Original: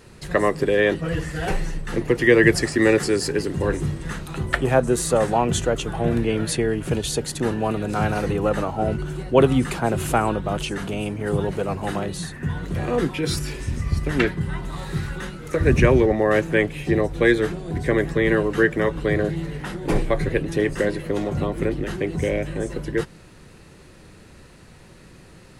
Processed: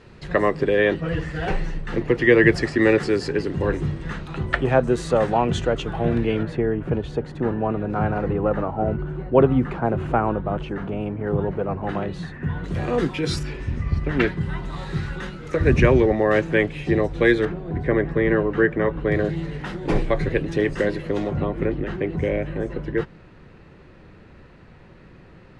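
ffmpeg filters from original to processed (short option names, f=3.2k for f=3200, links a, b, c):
-af "asetnsamples=n=441:p=0,asendcmd='6.43 lowpass f 1500;11.89 lowpass f 2600;12.64 lowpass f 6400;13.43 lowpass f 2800;14.21 lowpass f 5100;17.45 lowpass f 2000;19.12 lowpass f 5100;21.31 lowpass f 2500',lowpass=3.8k"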